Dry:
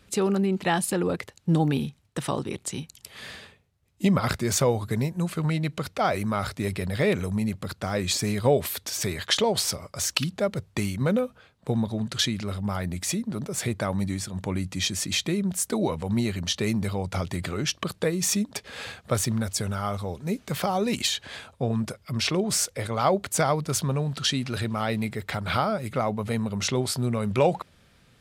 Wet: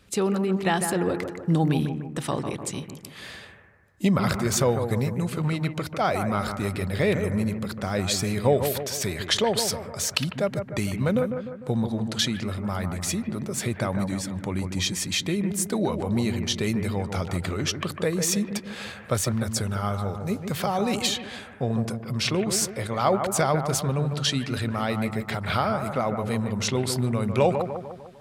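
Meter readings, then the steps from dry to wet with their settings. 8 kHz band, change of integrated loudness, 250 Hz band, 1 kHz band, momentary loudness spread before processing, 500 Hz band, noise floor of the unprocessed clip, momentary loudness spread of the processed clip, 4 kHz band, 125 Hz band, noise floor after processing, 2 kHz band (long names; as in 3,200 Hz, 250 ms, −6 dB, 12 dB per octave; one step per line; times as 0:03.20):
0.0 dB, +0.5 dB, +1.0 dB, +1.0 dB, 8 LU, +1.0 dB, −60 dBFS, 7 LU, 0.0 dB, +1.0 dB, −43 dBFS, +0.5 dB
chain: bucket-brigade delay 150 ms, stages 2,048, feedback 50%, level −7 dB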